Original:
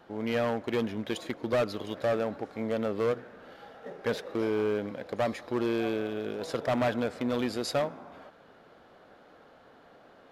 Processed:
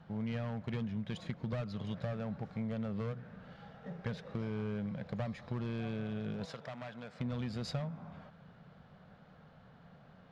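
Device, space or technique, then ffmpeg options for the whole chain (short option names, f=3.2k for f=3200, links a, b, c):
jukebox: -filter_complex "[0:a]lowpass=5.6k,lowshelf=f=230:t=q:w=3:g=11,acompressor=threshold=-29dB:ratio=5,asettb=1/sr,asplit=3[a][b][c];[a]atrim=end=6.454[d];[b]atrim=start=6.45:end=7.2,asetpts=PTS-STARTPTS,afade=t=in:d=0.004:c=qsin,afade=t=out:st=0.746:d=0.004:c=qsin,highpass=f=620:p=1[e];[c]atrim=start=7.196[f];[d][e]acrossfade=d=0.004:c1=hsin:c2=qsin[g];[g][f]acrossfade=d=0.004:c1=qsin:c2=hsin,volume=-5.5dB"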